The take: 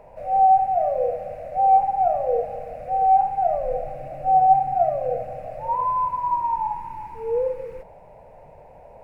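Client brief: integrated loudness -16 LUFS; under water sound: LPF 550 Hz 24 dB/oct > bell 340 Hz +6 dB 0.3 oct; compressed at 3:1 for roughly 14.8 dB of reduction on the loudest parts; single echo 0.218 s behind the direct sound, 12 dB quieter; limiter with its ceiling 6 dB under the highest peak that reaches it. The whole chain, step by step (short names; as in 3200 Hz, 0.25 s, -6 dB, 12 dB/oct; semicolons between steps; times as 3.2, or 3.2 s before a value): compressor 3:1, threshold -33 dBFS; limiter -28 dBFS; LPF 550 Hz 24 dB/oct; bell 340 Hz +6 dB 0.3 oct; echo 0.218 s -12 dB; gain +26 dB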